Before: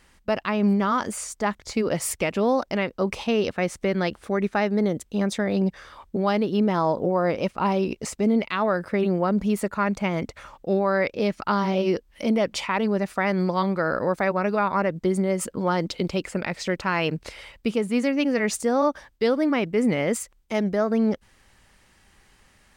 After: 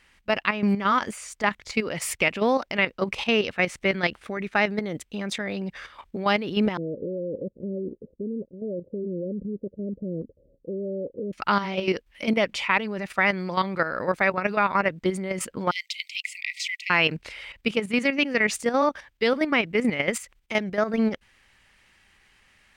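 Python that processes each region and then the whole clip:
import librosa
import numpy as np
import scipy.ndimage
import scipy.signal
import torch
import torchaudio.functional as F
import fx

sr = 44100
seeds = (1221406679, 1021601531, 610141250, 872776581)

y = fx.chain(x, sr, fx.steep_lowpass(hz=550.0, slope=96),
    fx.low_shelf(hz=140.0, db=-7.5), at=(6.77, 11.33))
y = fx.chain(y, sr, fx.brickwall_highpass(low_hz=1900.0),
    fx.high_shelf(hz=5100.0, db=6.0), at=(15.71, 16.9))
y = fx.peak_eq(y, sr, hz=2400.0, db=10.5, octaves=1.6)
y = fx.level_steps(y, sr, step_db=10)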